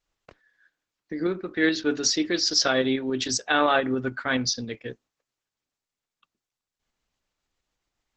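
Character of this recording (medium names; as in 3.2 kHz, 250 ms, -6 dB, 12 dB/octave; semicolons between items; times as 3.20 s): tremolo saw up 7.1 Hz, depth 40%; Opus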